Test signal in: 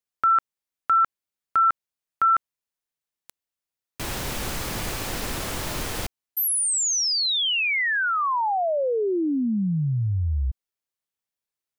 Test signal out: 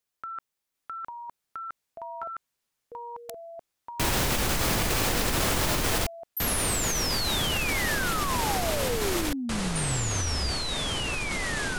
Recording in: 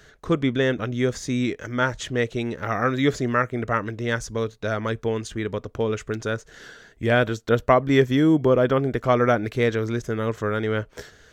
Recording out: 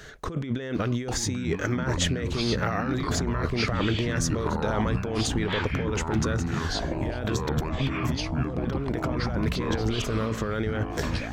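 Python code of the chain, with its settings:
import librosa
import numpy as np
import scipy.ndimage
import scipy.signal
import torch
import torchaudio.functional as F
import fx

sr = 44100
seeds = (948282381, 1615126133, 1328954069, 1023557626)

y = fx.over_compress(x, sr, threshold_db=-30.0, ratio=-1.0)
y = fx.echo_pitch(y, sr, ms=750, semitones=-6, count=3, db_per_echo=-3.0)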